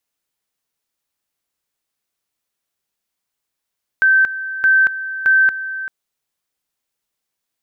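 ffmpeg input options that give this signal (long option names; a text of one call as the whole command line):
ffmpeg -f lavfi -i "aevalsrc='pow(10,(-9-13.5*gte(mod(t,0.62),0.23))/20)*sin(2*PI*1550*t)':duration=1.86:sample_rate=44100" out.wav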